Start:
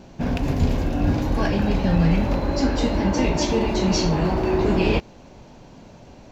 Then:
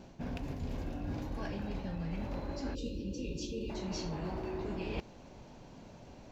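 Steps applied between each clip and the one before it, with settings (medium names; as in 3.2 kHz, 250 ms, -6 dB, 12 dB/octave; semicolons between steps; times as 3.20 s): reverse; compression 6:1, threshold -28 dBFS, peak gain reduction 14 dB; reverse; time-frequency box 2.74–3.70 s, 570–2400 Hz -28 dB; trim -7.5 dB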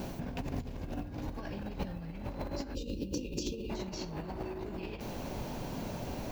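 added noise violet -70 dBFS; compressor with a negative ratio -43 dBFS, ratio -0.5; hard clipper -32.5 dBFS, distortion -29 dB; trim +7 dB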